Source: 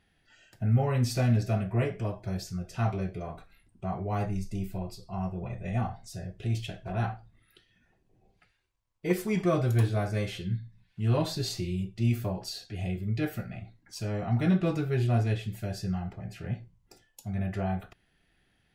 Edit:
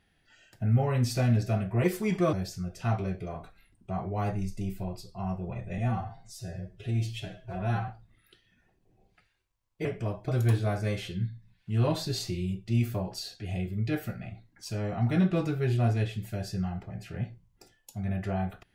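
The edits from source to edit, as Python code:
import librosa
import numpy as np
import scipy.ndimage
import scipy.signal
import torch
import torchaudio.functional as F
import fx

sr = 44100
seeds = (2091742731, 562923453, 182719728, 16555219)

y = fx.edit(x, sr, fx.swap(start_s=1.84, length_s=0.43, other_s=9.09, other_length_s=0.49),
    fx.stretch_span(start_s=5.72, length_s=1.4, factor=1.5), tone=tone)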